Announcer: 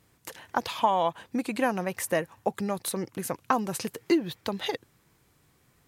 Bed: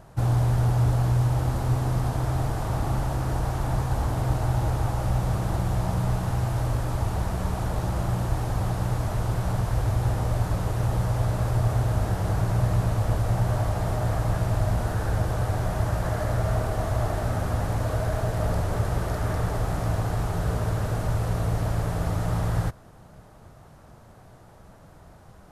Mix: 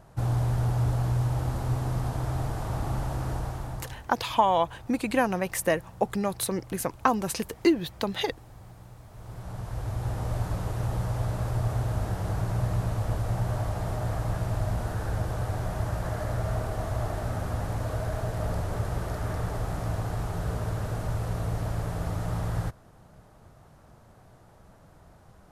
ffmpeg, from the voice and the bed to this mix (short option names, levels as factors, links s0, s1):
-filter_complex "[0:a]adelay=3550,volume=1.26[s0];[1:a]volume=4.73,afade=t=out:st=3.28:d=0.76:silence=0.125893,afade=t=in:st=9.1:d=1.25:silence=0.133352[s1];[s0][s1]amix=inputs=2:normalize=0"